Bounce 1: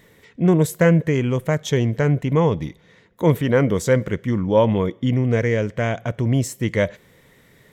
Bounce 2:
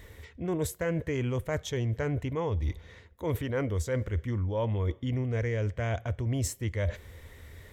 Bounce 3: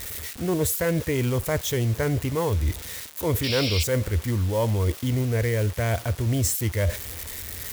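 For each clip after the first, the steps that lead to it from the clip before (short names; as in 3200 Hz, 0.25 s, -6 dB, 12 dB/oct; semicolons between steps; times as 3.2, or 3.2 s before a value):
resonant low shelf 110 Hz +11.5 dB, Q 3; reverse; compressor 6:1, threshold -28 dBFS, peak gain reduction 16 dB; reverse
switching spikes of -29.5 dBFS; requantised 8-bit, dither none; painted sound noise, 3.43–3.84, 2100–5700 Hz -35 dBFS; gain +6 dB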